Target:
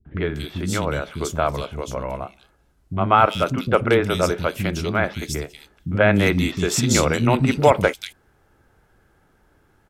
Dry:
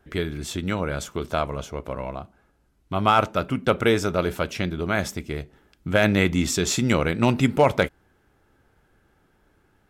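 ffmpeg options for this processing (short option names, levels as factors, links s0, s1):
-filter_complex "[0:a]acrossover=split=260|2900[s0][s1][s2];[s1]adelay=50[s3];[s2]adelay=240[s4];[s0][s3][s4]amix=inputs=3:normalize=0,volume=1.58"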